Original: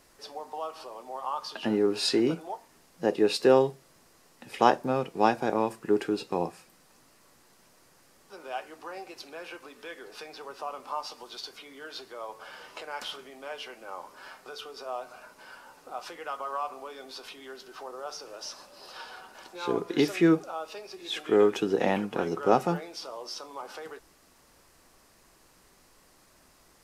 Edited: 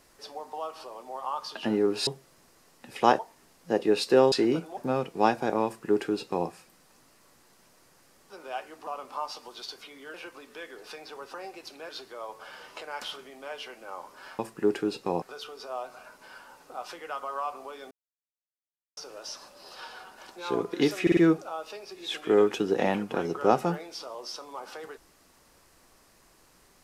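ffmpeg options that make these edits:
-filter_complex "[0:a]asplit=16[s0][s1][s2][s3][s4][s5][s6][s7][s8][s9][s10][s11][s12][s13][s14][s15];[s0]atrim=end=2.072[s16];[s1]atrim=start=3.648:end=4.772[s17];[s2]atrim=start=2.518:end=3.652[s18];[s3]atrim=start=2.068:end=2.522[s19];[s4]atrim=start=4.768:end=8.872[s20];[s5]atrim=start=10.618:end=11.892[s21];[s6]atrim=start=9.418:end=10.622[s22];[s7]atrim=start=8.868:end=9.422[s23];[s8]atrim=start=11.888:end=14.392[s24];[s9]atrim=start=5.648:end=6.482[s25];[s10]atrim=start=14.388:end=17.08,asetpts=PTS-STARTPTS,afade=t=out:st=2.688:d=0.004:c=hsin[s26];[s11]atrim=start=17.08:end=18.14,asetpts=PTS-STARTPTS,volume=0[s27];[s12]atrim=start=18.14:end=20.242,asetpts=PTS-STARTPTS,afade=t=in:d=0.004:c=hsin[s28];[s13]atrim=start=20.188:end=20.242[s29];[s14]atrim=start=20.188:end=20.242[s30];[s15]atrim=start=20.188[s31];[s16][s17]acrossfade=d=0.004:c1=hsin:c2=hsin[s32];[s32][s18]acrossfade=d=0.004:c1=hsin:c2=hsin[s33];[s33][s19]acrossfade=d=0.004:c1=hsin:c2=hsin[s34];[s34][s20]acrossfade=d=0.004:c1=hsin:c2=hsin[s35];[s35][s21]acrossfade=d=0.004:c1=hsin:c2=hsin[s36];[s36][s22]acrossfade=d=0.004:c1=hsin:c2=hsin[s37];[s37][s23]acrossfade=d=0.004:c1=hsin:c2=hsin[s38];[s38][s24]acrossfade=d=0.004:c1=hsin:c2=hsin[s39];[s39][s25]acrossfade=d=0.004:c1=hsin:c2=hsin[s40];[s26][s27][s28]concat=n=3:v=0:a=1[s41];[s40][s41]acrossfade=d=0.004:c1=hsin:c2=hsin[s42];[s42][s29]acrossfade=d=0.004:c1=hsin:c2=hsin[s43];[s43][s30]acrossfade=d=0.004:c1=hsin:c2=hsin[s44];[s44][s31]acrossfade=d=0.004:c1=hsin:c2=hsin"

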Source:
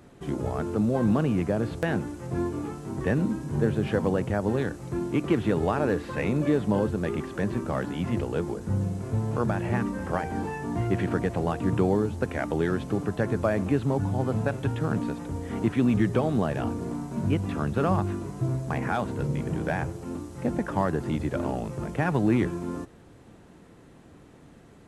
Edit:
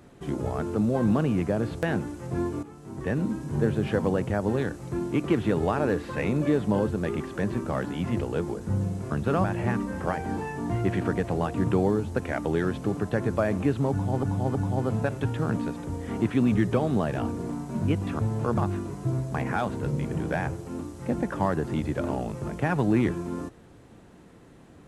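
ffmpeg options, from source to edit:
-filter_complex "[0:a]asplit=8[s0][s1][s2][s3][s4][s5][s6][s7];[s0]atrim=end=2.63,asetpts=PTS-STARTPTS,afade=t=out:st=2.626:d=0.004:c=hsin:silence=0.223872[s8];[s1]atrim=start=2.63:end=9.112,asetpts=PTS-STARTPTS,afade=t=in:d=1.07:c=qsin:silence=0.223872[s9];[s2]atrim=start=17.608:end=17.942[s10];[s3]atrim=start=9.498:end=14.292[s11];[s4]atrim=start=13.968:end=14.292[s12];[s5]atrim=start=13.968:end=17.612[s13];[s6]atrim=start=9.108:end=9.502[s14];[s7]atrim=start=17.938[s15];[s8][s9]concat=n=2:v=0:a=1[s16];[s16][s10]acrossfade=d=0.004:c1=hsin:c2=hsin[s17];[s17][s11]acrossfade=d=0.004:c1=hsin:c2=hsin[s18];[s18][s12]acrossfade=d=0.004:c1=hsin:c2=hsin[s19];[s19][s13]acrossfade=d=0.004:c1=hsin:c2=hsin[s20];[s20][s14]acrossfade=d=0.004:c1=hsin:c2=hsin[s21];[s21][s15]acrossfade=d=0.004:c1=hsin:c2=hsin"

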